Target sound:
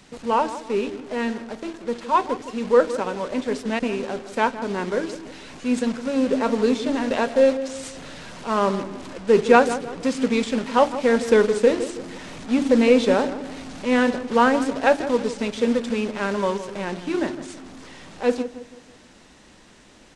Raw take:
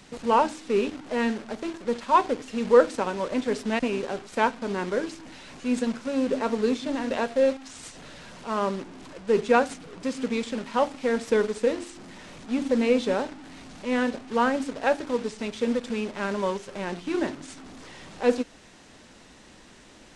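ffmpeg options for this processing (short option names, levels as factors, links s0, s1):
-filter_complex "[0:a]dynaudnorm=f=760:g=13:m=3.76,asplit=2[s0][s1];[s1]adelay=162,lowpass=f=1500:p=1,volume=0.251,asplit=2[s2][s3];[s3]adelay=162,lowpass=f=1500:p=1,volume=0.41,asplit=2[s4][s5];[s5]adelay=162,lowpass=f=1500:p=1,volume=0.41,asplit=2[s6][s7];[s7]adelay=162,lowpass=f=1500:p=1,volume=0.41[s8];[s0][s2][s4][s6][s8]amix=inputs=5:normalize=0"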